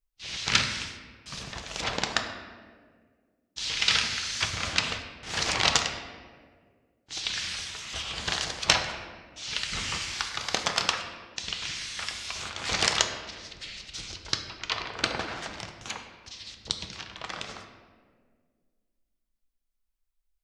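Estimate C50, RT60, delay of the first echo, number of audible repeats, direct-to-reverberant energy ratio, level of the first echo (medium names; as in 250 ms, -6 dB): 7.0 dB, 1.8 s, no echo, no echo, 4.5 dB, no echo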